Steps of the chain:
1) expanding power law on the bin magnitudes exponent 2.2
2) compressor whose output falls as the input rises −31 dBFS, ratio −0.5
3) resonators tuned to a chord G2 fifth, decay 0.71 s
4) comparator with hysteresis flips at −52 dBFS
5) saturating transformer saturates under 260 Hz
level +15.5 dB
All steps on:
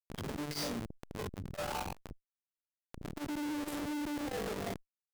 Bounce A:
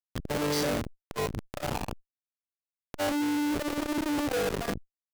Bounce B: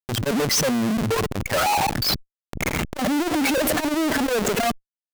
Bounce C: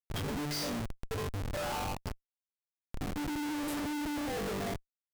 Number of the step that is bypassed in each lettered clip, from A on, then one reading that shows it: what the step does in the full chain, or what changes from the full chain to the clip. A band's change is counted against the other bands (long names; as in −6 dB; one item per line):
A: 2, 500 Hz band +2.5 dB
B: 3, 250 Hz band −3.5 dB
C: 5, change in crest factor −3.5 dB